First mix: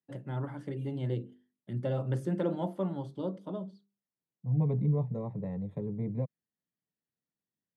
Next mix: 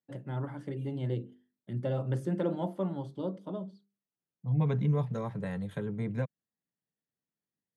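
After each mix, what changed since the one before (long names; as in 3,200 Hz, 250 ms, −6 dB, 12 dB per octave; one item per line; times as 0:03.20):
second voice: remove moving average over 29 samples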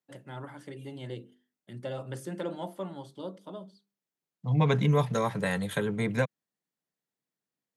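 second voice +11.0 dB
master: add spectral tilt +3 dB per octave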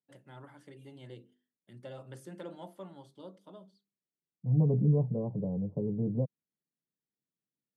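first voice −9.0 dB
second voice: add Gaussian smoothing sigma 17 samples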